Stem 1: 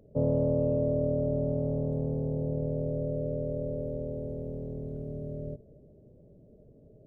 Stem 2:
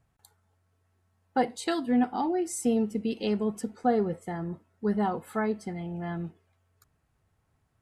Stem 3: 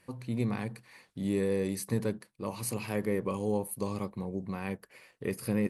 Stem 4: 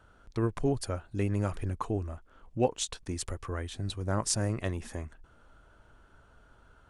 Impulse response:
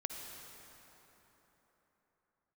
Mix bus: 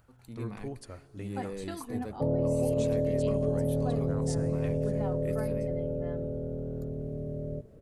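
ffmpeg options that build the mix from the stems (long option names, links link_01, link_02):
-filter_complex "[0:a]adelay=2050,volume=1.5dB[link_01];[1:a]acompressor=mode=upward:threshold=-41dB:ratio=2.5,volume=-12.5dB[link_02];[2:a]dynaudnorm=framelen=110:gausssize=5:maxgain=9.5dB,volume=-19dB[link_03];[3:a]volume=-13dB,asplit=2[link_04][link_05];[link_05]volume=-11.5dB[link_06];[4:a]atrim=start_sample=2205[link_07];[link_06][link_07]afir=irnorm=-1:irlink=0[link_08];[link_01][link_02][link_03][link_04][link_08]amix=inputs=5:normalize=0,alimiter=limit=-19.5dB:level=0:latency=1:release=42"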